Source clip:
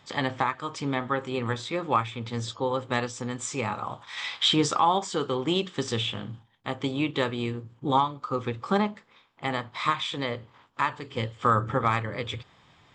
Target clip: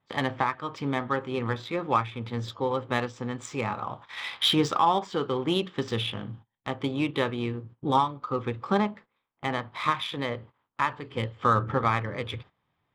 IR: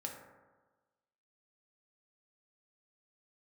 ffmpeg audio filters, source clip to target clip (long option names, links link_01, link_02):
-af "adynamicsmooth=sensitivity=3.5:basefreq=3100,agate=range=-17dB:threshold=-46dB:ratio=16:detection=peak,adynamicequalizer=threshold=0.00562:dfrequency=5600:dqfactor=0.7:tfrequency=5600:tqfactor=0.7:attack=5:release=100:ratio=0.375:range=3:mode=cutabove:tftype=highshelf"